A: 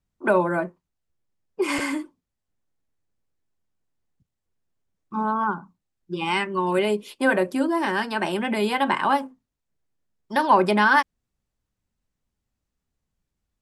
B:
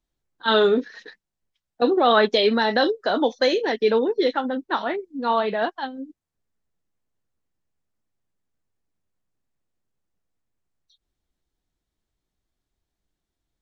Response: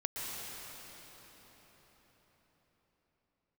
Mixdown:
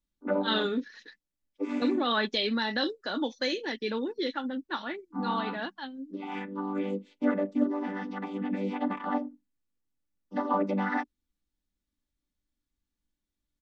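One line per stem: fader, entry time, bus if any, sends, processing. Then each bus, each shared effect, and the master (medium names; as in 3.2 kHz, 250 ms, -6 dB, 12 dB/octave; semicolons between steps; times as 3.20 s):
-9.0 dB, 0.00 s, no send, vocoder on a held chord major triad, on G3
-5.5 dB, 0.00 s, no send, peaking EQ 650 Hz -10 dB 1.5 oct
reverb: none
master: comb 3.5 ms, depth 31%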